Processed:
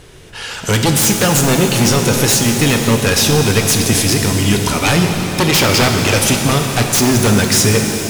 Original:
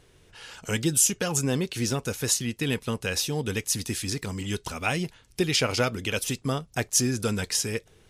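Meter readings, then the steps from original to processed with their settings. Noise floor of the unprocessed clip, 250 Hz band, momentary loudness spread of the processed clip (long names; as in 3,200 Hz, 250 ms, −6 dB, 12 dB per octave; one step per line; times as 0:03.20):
−59 dBFS, +15.0 dB, 3 LU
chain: sine wavefolder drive 15 dB, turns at −7.5 dBFS
reverb with rising layers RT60 3.8 s, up +7 semitones, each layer −8 dB, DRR 3 dB
level −2 dB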